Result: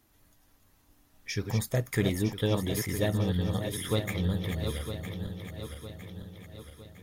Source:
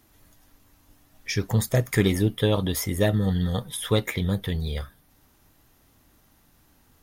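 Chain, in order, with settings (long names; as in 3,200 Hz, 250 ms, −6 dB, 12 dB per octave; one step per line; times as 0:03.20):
feedback delay that plays each chunk backwards 479 ms, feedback 69%, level −7 dB
level −6.5 dB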